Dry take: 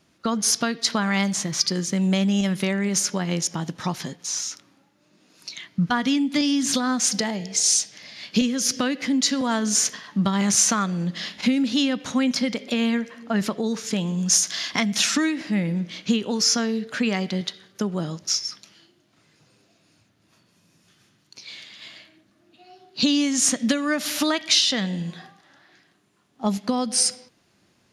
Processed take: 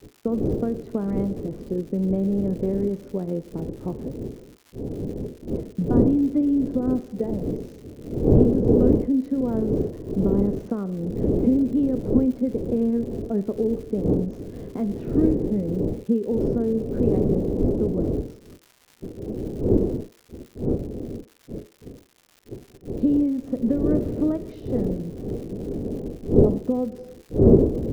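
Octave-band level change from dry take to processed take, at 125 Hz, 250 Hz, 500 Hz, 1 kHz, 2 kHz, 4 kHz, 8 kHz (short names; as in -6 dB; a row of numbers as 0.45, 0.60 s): +5.0 dB, +2.0 dB, +7.5 dB, -10.5 dB, under -20 dB, under -30 dB, under -30 dB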